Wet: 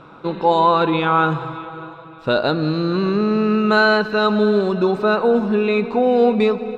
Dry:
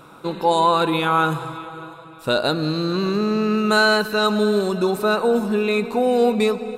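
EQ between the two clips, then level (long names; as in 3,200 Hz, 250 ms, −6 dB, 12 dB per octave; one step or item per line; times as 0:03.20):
high-frequency loss of the air 200 metres
+3.0 dB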